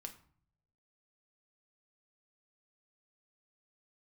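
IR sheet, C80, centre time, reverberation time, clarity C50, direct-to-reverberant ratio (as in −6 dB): 16.5 dB, 9 ms, 0.55 s, 13.0 dB, 4.5 dB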